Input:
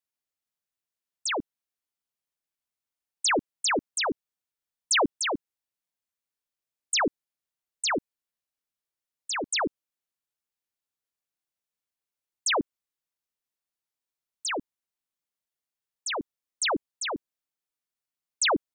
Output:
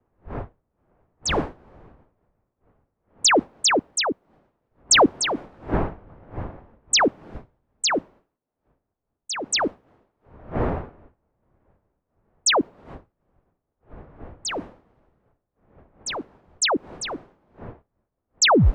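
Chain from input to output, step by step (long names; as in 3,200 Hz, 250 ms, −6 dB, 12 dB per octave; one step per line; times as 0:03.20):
turntable brake at the end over 0.36 s
wind on the microphone 640 Hz −41 dBFS
multiband upward and downward expander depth 100%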